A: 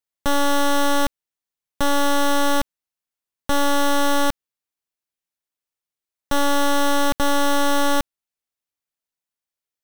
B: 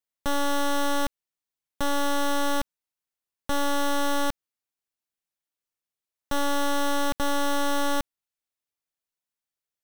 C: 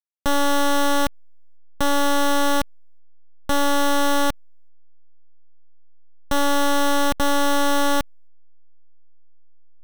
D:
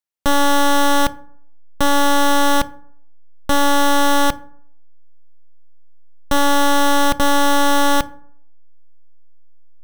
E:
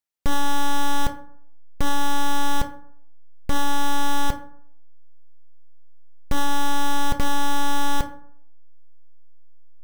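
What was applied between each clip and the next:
peak limiter -20.5 dBFS, peak gain reduction 4 dB; trim -2.5 dB
hysteresis with a dead band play -41 dBFS; trim +6.5 dB
reverberation RT60 0.60 s, pre-delay 3 ms, DRR 14.5 dB; trim +4.5 dB
one-sided wavefolder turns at -24.5 dBFS

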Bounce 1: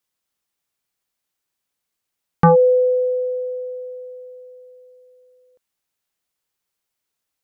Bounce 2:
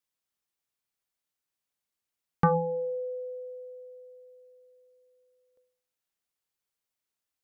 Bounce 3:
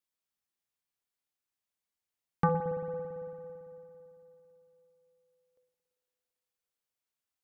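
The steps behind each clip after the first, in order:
de-hum 167.4 Hz, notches 6; trim -8 dB
spring tank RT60 2.9 s, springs 56 ms, chirp 35 ms, DRR 8 dB; trim -4 dB

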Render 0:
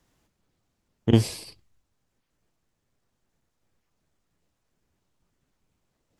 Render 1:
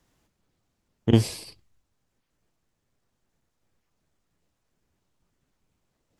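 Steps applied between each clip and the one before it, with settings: no audible change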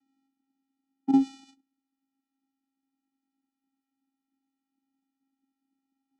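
vocoder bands 4, square 270 Hz; trim -2 dB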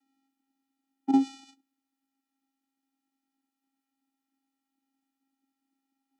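Bessel high-pass 330 Hz, order 2; trim +3 dB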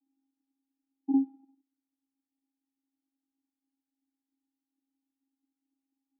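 cascade formant filter u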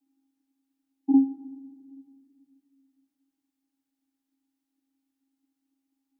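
simulated room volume 3800 m³, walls mixed, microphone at 0.39 m; trim +5.5 dB

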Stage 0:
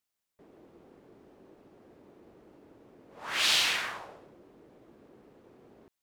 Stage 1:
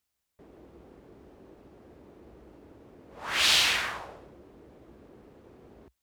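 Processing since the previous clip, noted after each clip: peaking EQ 61 Hz +14 dB 1 oct; trim +3 dB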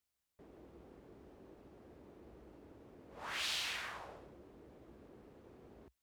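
compression 2:1, threshold -39 dBFS, peak gain reduction 11 dB; trim -5.5 dB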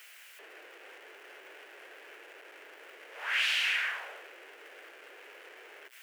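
jump at every zero crossing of -49.5 dBFS; steep high-pass 410 Hz 36 dB/octave; high-order bell 2.1 kHz +12.5 dB 1.3 oct

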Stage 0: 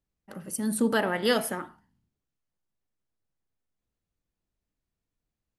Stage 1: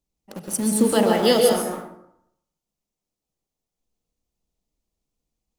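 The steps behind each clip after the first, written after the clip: fifteen-band graphic EQ 100 Hz -9 dB, 1.6 kHz -12 dB, 6.3 kHz +4 dB; in parallel at -6 dB: word length cut 6-bit, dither none; on the sum: plate-style reverb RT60 0.76 s, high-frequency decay 0.55×, pre-delay 115 ms, DRR 1.5 dB; trim +3 dB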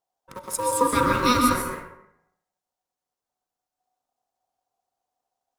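ring modulator 740 Hz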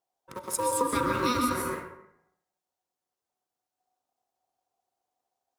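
high-pass 53 Hz; peaking EQ 360 Hz +6 dB 0.3 oct; compression, threshold -21 dBFS, peak gain reduction 7.5 dB; trim -1.5 dB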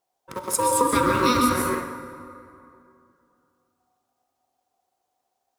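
plate-style reverb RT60 2.8 s, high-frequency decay 0.55×, DRR 10 dB; trim +6.5 dB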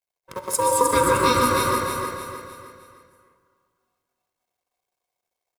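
companding laws mixed up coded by A; comb 1.9 ms, depth 40%; feedback delay 307 ms, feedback 41%, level -4.5 dB

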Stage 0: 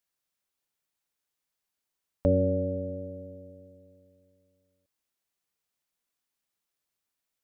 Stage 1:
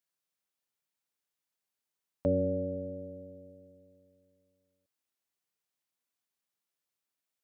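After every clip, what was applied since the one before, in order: high-pass 96 Hz; trim -4 dB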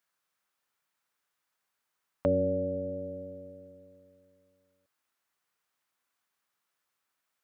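peaking EQ 1.3 kHz +10 dB 1.6 oct; in parallel at -1 dB: compression, threshold -37 dBFS, peak gain reduction 14 dB; on the sum: trim -2 dB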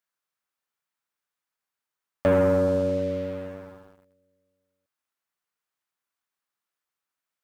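waveshaping leveller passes 3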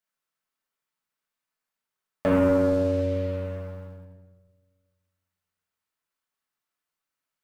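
simulated room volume 680 m³, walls mixed, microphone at 1.5 m; trim -2.5 dB

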